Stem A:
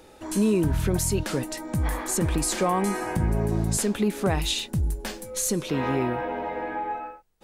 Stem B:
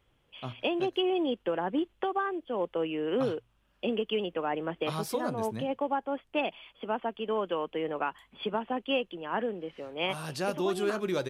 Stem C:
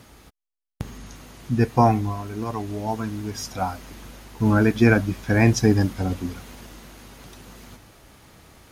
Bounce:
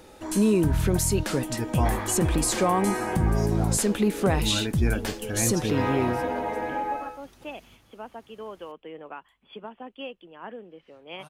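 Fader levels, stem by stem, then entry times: +1.0 dB, -8.5 dB, -11.5 dB; 0.00 s, 1.10 s, 0.00 s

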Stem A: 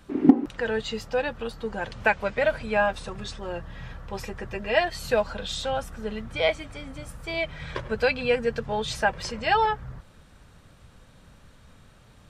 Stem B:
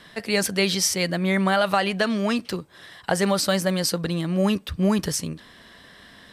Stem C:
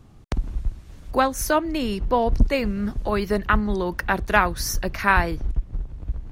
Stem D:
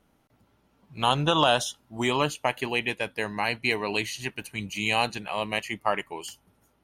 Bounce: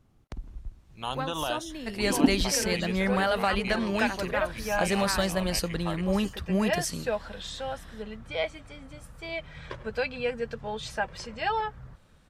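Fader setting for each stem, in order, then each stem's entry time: -6.5 dB, -5.5 dB, -14.0 dB, -10.5 dB; 1.95 s, 1.70 s, 0.00 s, 0.00 s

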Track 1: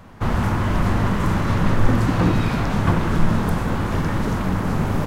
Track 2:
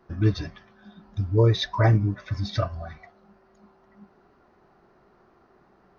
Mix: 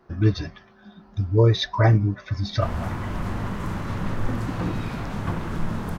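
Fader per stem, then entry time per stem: -9.0 dB, +2.0 dB; 2.40 s, 0.00 s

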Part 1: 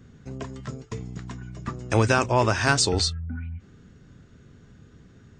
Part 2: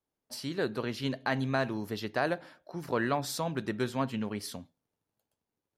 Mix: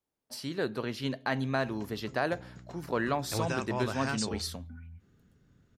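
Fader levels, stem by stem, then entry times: -13.5 dB, -0.5 dB; 1.40 s, 0.00 s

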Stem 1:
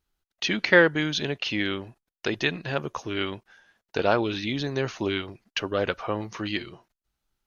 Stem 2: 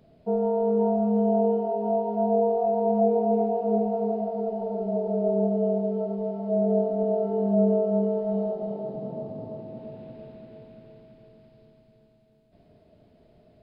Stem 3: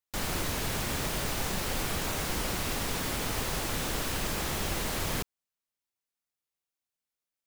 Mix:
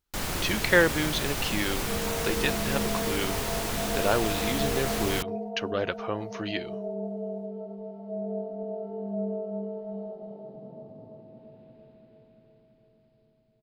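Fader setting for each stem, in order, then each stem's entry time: -3.0 dB, -10.0 dB, +1.0 dB; 0.00 s, 1.60 s, 0.00 s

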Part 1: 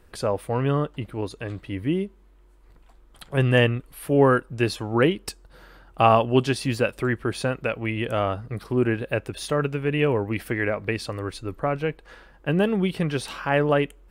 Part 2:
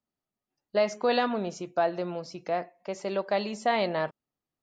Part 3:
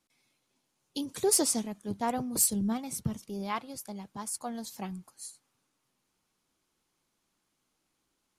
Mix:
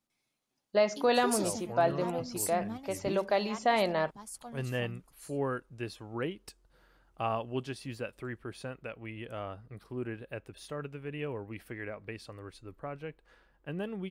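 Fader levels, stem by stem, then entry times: -15.5 dB, -1.0 dB, -9.0 dB; 1.20 s, 0.00 s, 0.00 s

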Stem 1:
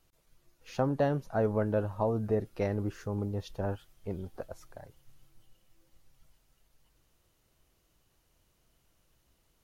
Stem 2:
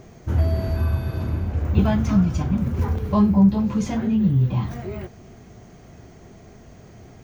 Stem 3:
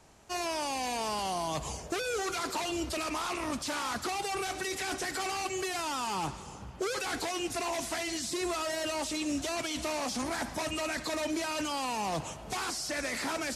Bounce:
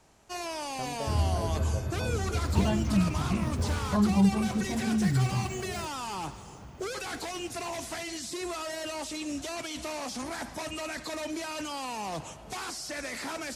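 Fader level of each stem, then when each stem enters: -11.0 dB, -7.5 dB, -2.5 dB; 0.00 s, 0.80 s, 0.00 s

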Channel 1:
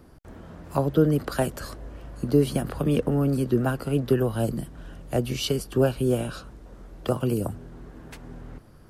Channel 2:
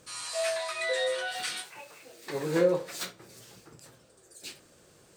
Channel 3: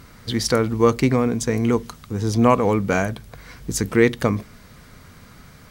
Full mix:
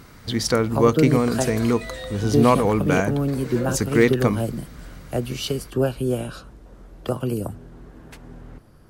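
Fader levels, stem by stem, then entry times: 0.0 dB, -6.0 dB, -1.0 dB; 0.00 s, 1.00 s, 0.00 s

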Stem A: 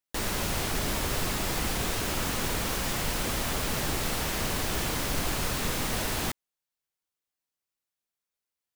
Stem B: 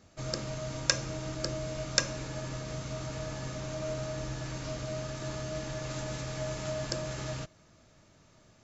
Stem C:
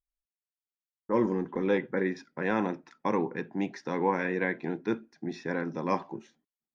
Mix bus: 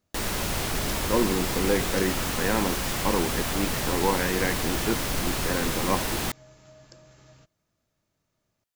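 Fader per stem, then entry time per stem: +1.5 dB, -17.0 dB, +2.0 dB; 0.00 s, 0.00 s, 0.00 s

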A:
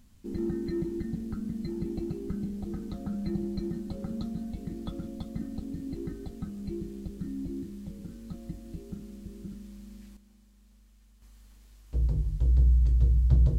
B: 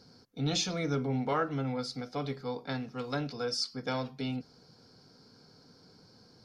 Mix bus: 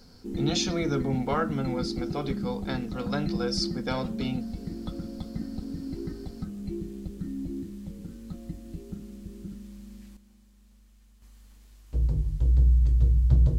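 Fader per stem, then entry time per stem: +1.5 dB, +2.5 dB; 0.00 s, 0.00 s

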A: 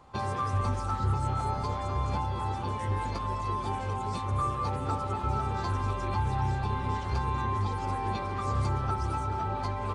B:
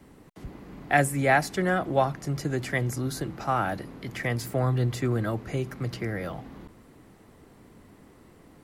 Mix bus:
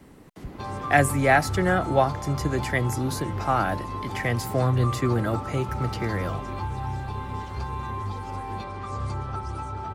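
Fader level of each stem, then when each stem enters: -2.0 dB, +2.5 dB; 0.45 s, 0.00 s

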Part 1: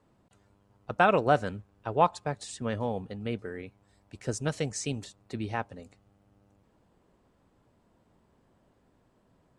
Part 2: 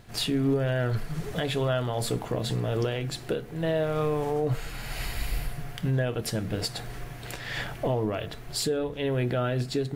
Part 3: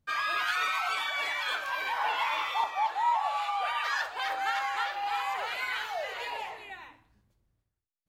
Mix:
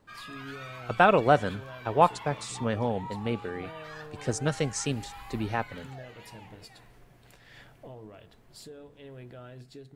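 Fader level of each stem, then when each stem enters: +2.5 dB, -19.0 dB, -15.0 dB; 0.00 s, 0.00 s, 0.00 s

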